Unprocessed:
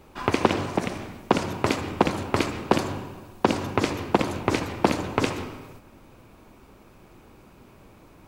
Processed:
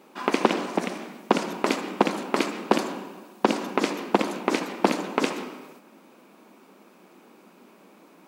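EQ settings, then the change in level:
linear-phase brick-wall high-pass 170 Hz
0.0 dB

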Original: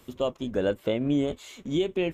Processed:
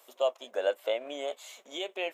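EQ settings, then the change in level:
high-shelf EQ 5,800 Hz +8.5 dB
dynamic equaliser 2,500 Hz, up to +4 dB, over −42 dBFS, Q 0.8
four-pole ladder high-pass 560 Hz, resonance 55%
+4.5 dB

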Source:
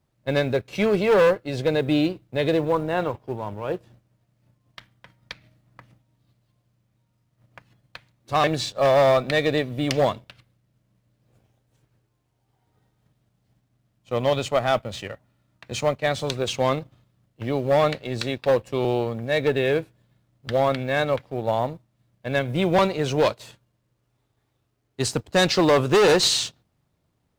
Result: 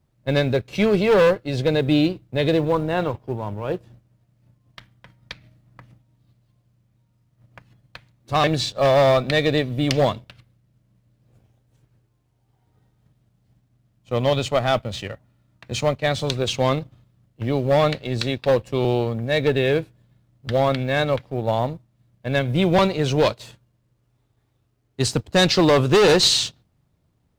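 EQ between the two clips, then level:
low-shelf EQ 240 Hz +7 dB
dynamic equaliser 3,900 Hz, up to +4 dB, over −41 dBFS, Q 1
0.0 dB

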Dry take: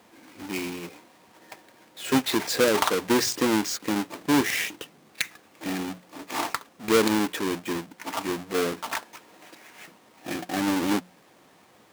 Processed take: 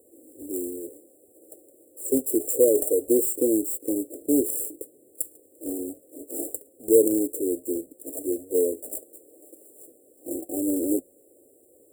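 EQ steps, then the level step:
linear-phase brick-wall band-stop 750–7,200 Hz
parametric band 120 Hz −13.5 dB 1.8 octaves
phaser with its sweep stopped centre 700 Hz, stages 6
+7.5 dB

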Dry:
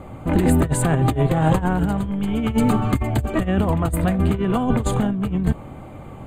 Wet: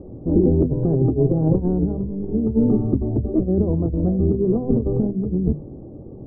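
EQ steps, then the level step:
transistor ladder low-pass 480 Hz, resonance 45%
mains-hum notches 50/100/150/200/250 Hz
+8.0 dB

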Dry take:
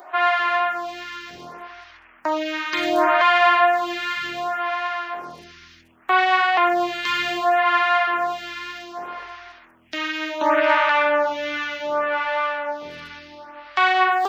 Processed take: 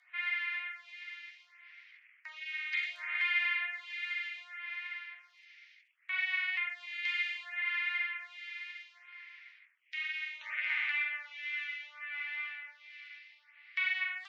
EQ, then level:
high-pass with resonance 2,100 Hz, resonance Q 5.9
low-pass filter 3,000 Hz 12 dB per octave
first difference
−8.0 dB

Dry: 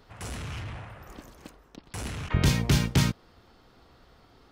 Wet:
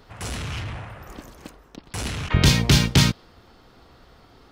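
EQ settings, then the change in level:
dynamic equaliser 4,000 Hz, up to +6 dB, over −47 dBFS, Q 0.9
+5.5 dB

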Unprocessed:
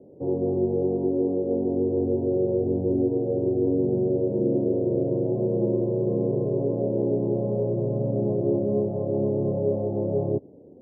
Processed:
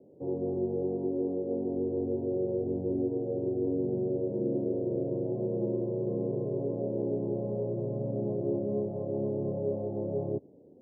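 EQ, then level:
high-pass filter 86 Hz
−7.0 dB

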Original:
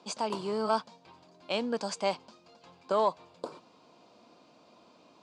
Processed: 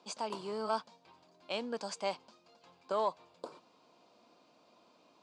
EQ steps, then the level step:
low-shelf EQ 240 Hz −6 dB
−5.0 dB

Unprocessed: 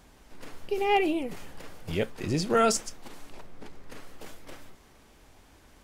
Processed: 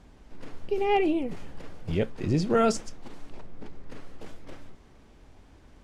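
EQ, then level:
high-frequency loss of the air 52 metres
low-shelf EQ 480 Hz +8 dB
−3.0 dB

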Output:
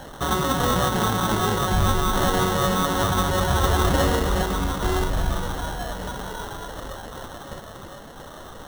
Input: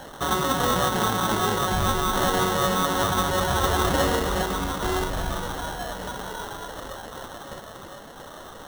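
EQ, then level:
low-shelf EQ 170 Hz +7.5 dB
0.0 dB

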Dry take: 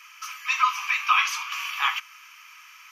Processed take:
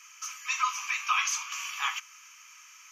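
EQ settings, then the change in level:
parametric band 6,700 Hz +15 dB 0.51 octaves
−7.0 dB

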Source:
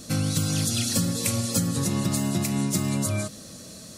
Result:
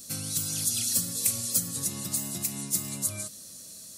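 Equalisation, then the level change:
first-order pre-emphasis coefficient 0.8
high-shelf EQ 10,000 Hz +4 dB
0.0 dB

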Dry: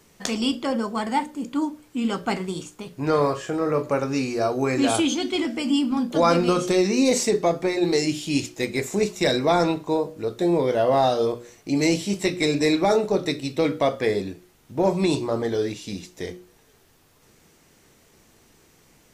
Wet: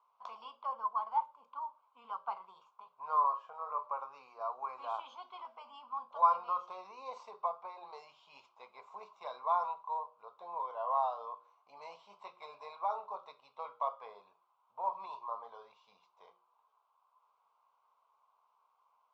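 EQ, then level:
four-pole ladder band-pass 1,100 Hz, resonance 80%
high-frequency loss of the air 140 metres
phaser with its sweep stopped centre 750 Hz, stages 4
0.0 dB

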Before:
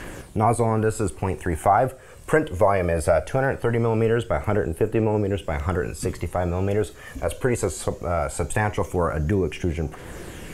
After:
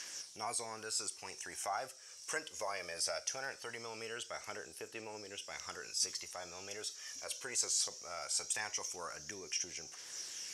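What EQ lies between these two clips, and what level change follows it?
resonant band-pass 5,600 Hz, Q 9.2
+15.5 dB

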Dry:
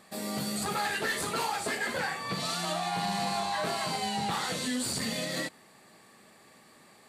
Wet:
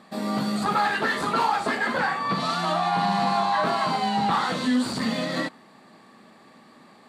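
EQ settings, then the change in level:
drawn EQ curve 100 Hz 0 dB, 250 Hz +11 dB, 400 Hz +4 dB, 1,100 Hz +7 dB, 2,300 Hz −1 dB, 12,000 Hz −10 dB
dynamic equaliser 1,200 Hz, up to +5 dB, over −40 dBFS, Q 1.1
parametric band 3,900 Hz +6.5 dB 1.1 octaves
0.0 dB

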